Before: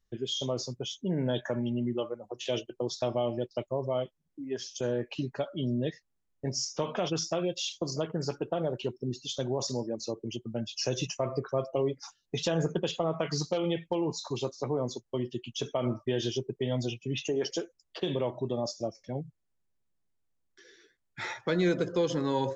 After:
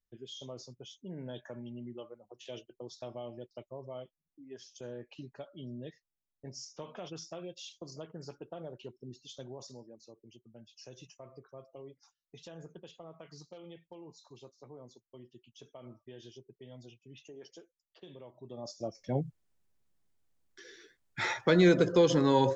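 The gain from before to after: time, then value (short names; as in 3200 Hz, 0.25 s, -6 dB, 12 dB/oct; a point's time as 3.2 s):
9.4 s -13 dB
10.04 s -20 dB
18.33 s -20 dB
18.71 s -8 dB
19.15 s +4 dB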